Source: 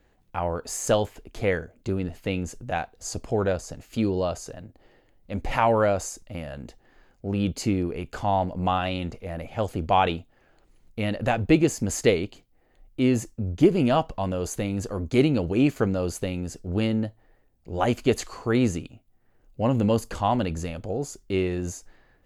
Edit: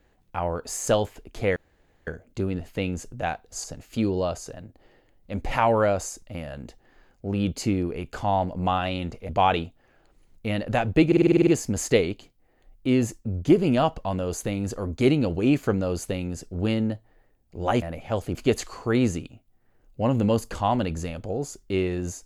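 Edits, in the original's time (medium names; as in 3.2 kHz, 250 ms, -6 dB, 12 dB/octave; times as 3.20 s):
1.56 s: insert room tone 0.51 s
3.13–3.64 s: delete
9.29–9.82 s: move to 17.95 s
11.60 s: stutter 0.05 s, 9 plays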